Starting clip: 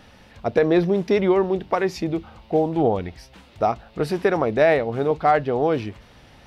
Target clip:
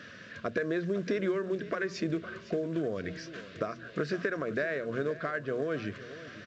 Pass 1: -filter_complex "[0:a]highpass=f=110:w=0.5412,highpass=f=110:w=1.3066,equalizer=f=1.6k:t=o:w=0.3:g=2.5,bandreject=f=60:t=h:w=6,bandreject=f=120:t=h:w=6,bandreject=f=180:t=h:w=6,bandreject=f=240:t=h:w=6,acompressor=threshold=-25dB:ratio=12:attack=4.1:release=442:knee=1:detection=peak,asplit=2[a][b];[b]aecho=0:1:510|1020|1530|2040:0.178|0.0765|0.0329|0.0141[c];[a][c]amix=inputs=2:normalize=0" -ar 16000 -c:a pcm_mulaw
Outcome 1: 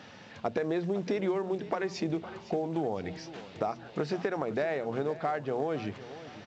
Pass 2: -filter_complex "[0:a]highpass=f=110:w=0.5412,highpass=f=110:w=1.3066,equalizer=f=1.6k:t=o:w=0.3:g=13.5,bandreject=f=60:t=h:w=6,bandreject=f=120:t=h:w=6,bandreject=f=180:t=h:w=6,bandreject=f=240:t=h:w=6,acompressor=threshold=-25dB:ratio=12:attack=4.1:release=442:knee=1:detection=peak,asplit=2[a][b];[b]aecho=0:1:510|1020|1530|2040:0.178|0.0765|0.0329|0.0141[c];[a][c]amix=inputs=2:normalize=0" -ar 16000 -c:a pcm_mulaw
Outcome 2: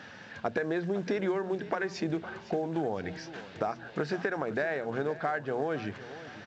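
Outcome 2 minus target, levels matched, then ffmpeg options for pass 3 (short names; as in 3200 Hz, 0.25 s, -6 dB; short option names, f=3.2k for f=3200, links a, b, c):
1000 Hz band +6.0 dB
-filter_complex "[0:a]highpass=f=110:w=0.5412,highpass=f=110:w=1.3066,equalizer=f=1.6k:t=o:w=0.3:g=13.5,bandreject=f=60:t=h:w=6,bandreject=f=120:t=h:w=6,bandreject=f=180:t=h:w=6,bandreject=f=240:t=h:w=6,acompressor=threshold=-25dB:ratio=12:attack=4.1:release=442:knee=1:detection=peak,asuperstop=centerf=830:order=4:qfactor=2.1,asplit=2[a][b];[b]aecho=0:1:510|1020|1530|2040:0.178|0.0765|0.0329|0.0141[c];[a][c]amix=inputs=2:normalize=0" -ar 16000 -c:a pcm_mulaw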